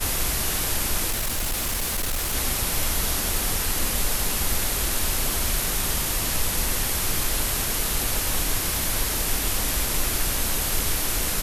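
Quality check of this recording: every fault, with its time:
1.10–2.35 s: clipped -22 dBFS

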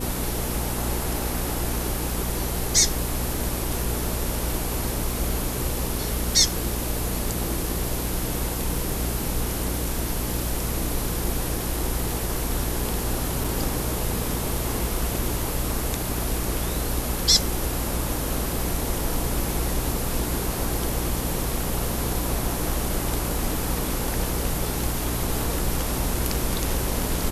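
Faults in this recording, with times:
hum 60 Hz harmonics 8 -30 dBFS
13.44 s: dropout 3.9 ms

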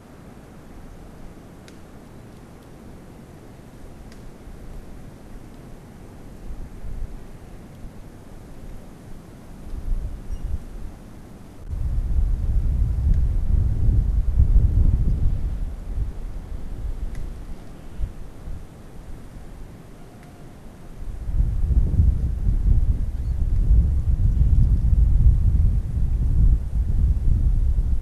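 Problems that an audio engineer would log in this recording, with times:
11.11–11.71 s: clipped -33 dBFS

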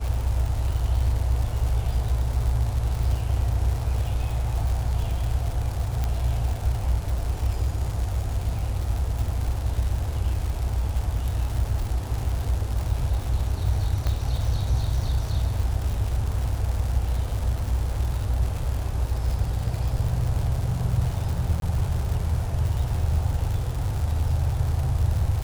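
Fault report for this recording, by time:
crackle 200 per s -29 dBFS
6.04 s: pop -14 dBFS
14.07 s: pop -14 dBFS
21.60–21.62 s: dropout 22 ms

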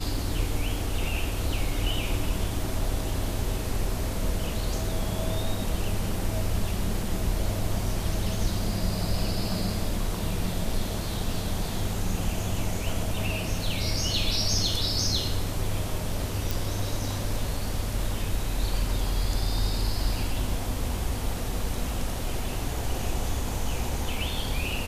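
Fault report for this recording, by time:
16.51 s: pop

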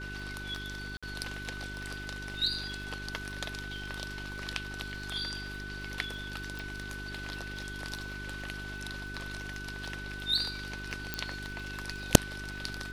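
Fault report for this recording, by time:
crackle 46 per s -43 dBFS
hum 50 Hz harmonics 8 -43 dBFS
whine 1.5 kHz -41 dBFS
0.97–1.03 s: dropout 56 ms
6.59 s: pop
11.14 s: pop -15 dBFS

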